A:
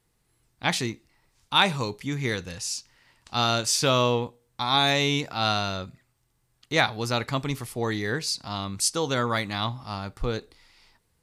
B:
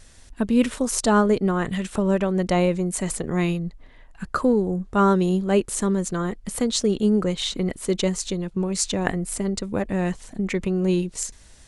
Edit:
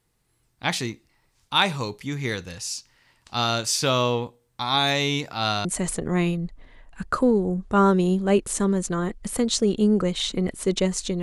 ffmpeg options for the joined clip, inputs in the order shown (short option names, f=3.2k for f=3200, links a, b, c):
-filter_complex "[0:a]apad=whole_dur=11.22,atrim=end=11.22,atrim=end=5.652[a];[1:a]atrim=start=2.868:end=8.44[b];[a][b]acrossfade=d=0.004:c1=hsin:c2=hsin"